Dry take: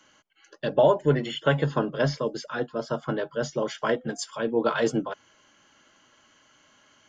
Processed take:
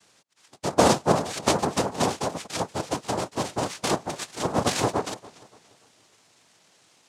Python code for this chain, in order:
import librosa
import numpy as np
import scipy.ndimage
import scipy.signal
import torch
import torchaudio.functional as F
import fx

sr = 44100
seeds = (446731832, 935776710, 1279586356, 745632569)

y = fx.noise_vocoder(x, sr, seeds[0], bands=2)
y = fx.echo_warbled(y, sr, ms=289, feedback_pct=38, rate_hz=2.8, cents=106, wet_db=-20.5)